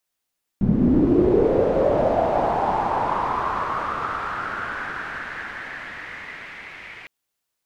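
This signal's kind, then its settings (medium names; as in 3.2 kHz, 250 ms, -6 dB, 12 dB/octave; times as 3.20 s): swept filtered noise white, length 6.46 s lowpass, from 170 Hz, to 2.2 kHz, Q 4.7, linear, gain ramp -34 dB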